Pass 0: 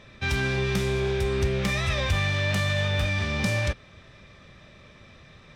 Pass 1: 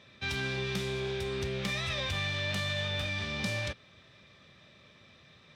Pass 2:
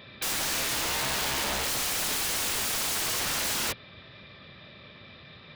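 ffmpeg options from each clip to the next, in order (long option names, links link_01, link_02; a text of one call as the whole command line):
ffmpeg -i in.wav -af "highpass=96,equalizer=frequency=3700:width_type=o:width=1:gain=6,volume=-8dB" out.wav
ffmpeg -i in.wav -af "aresample=11025,aresample=44100,aeval=exprs='(mod(47.3*val(0)+1,2)-1)/47.3':channel_layout=same,volume=9dB" out.wav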